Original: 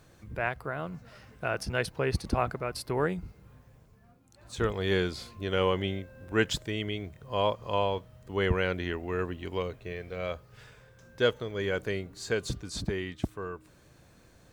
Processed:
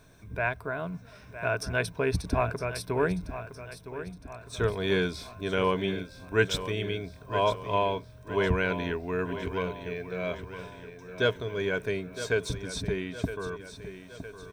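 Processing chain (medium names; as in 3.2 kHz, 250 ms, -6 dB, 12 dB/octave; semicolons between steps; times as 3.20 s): rippled EQ curve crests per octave 1.6, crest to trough 9 dB; feedback delay 962 ms, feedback 52%, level -12 dB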